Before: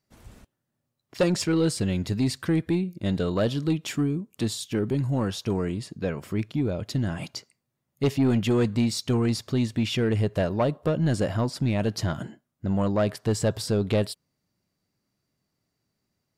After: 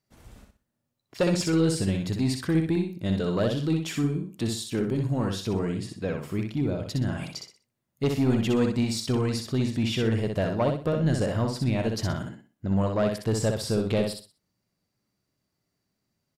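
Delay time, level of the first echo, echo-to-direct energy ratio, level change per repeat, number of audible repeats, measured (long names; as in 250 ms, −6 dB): 62 ms, −4.5 dB, −4.0 dB, −11.0 dB, 3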